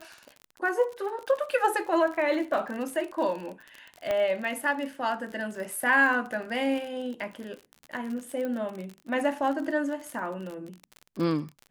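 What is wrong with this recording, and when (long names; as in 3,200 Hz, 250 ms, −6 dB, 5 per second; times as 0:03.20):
surface crackle 47 per second −34 dBFS
0:04.11: click −16 dBFS
0:08.45: click −22 dBFS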